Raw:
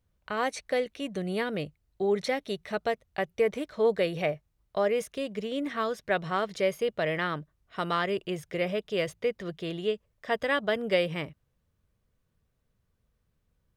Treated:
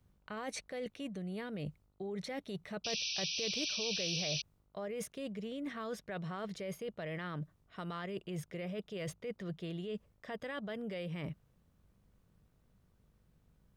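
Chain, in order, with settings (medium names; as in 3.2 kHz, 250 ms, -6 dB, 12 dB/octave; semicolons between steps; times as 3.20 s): peaking EQ 180 Hz +7 dB 0.94 oct; peak limiter -23.5 dBFS, peak gain reduction 10 dB; reverse; compression 10:1, threshold -40 dBFS, peak gain reduction 13.5 dB; reverse; mains buzz 50 Hz, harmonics 29, -77 dBFS -6 dB/octave; painted sound noise, 2.84–4.42 s, 2.3–6.1 kHz -40 dBFS; trim +2 dB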